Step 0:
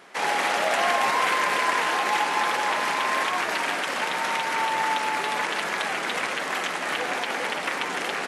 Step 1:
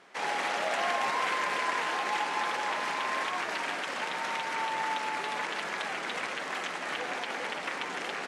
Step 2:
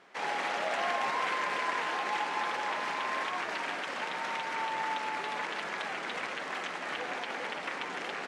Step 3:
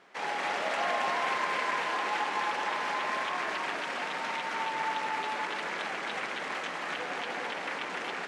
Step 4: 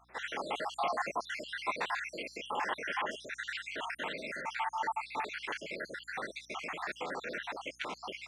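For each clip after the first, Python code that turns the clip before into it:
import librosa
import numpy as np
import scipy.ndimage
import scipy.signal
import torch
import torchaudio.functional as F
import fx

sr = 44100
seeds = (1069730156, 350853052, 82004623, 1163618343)

y1 = scipy.signal.sosfilt(scipy.signal.butter(2, 8500.0, 'lowpass', fs=sr, output='sos'), x)
y1 = y1 * 10.0 ** (-7.0 / 20.0)
y2 = fx.high_shelf(y1, sr, hz=7800.0, db=-9.0)
y2 = y2 * 10.0 ** (-1.5 / 20.0)
y3 = y2 + 10.0 ** (-4.0 / 20.0) * np.pad(y2, (int(266 * sr / 1000.0), 0))[:len(y2)]
y4 = fx.spec_dropout(y3, sr, seeds[0], share_pct=68)
y4 = fx.add_hum(y4, sr, base_hz=60, snr_db=32)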